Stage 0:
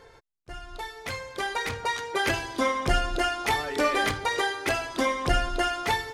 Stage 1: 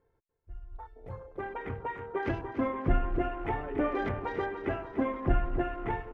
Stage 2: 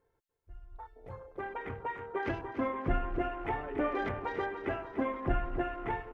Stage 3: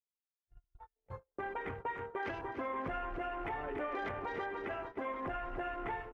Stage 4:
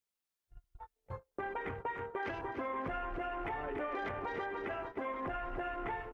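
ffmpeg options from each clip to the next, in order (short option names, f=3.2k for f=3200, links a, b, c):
-af "afwtdn=0.0224,firequalizer=gain_entry='entry(330,0);entry(490,-6);entry(4600,-26);entry(12000,-22)':delay=0.05:min_phase=1,aecho=1:1:293|586|879|1172|1465|1758|2051:0.299|0.179|0.107|0.0645|0.0387|0.0232|0.0139"
-af "lowshelf=f=370:g=-5.5"
-filter_complex "[0:a]agate=range=-38dB:threshold=-43dB:ratio=16:detection=peak,acrossover=split=470[a][b];[a]acompressor=threshold=-42dB:ratio=6[c];[c][b]amix=inputs=2:normalize=0,alimiter=level_in=6.5dB:limit=-24dB:level=0:latency=1:release=96,volume=-6.5dB,volume=1dB"
-af "acompressor=threshold=-47dB:ratio=1.5,volume=4.5dB"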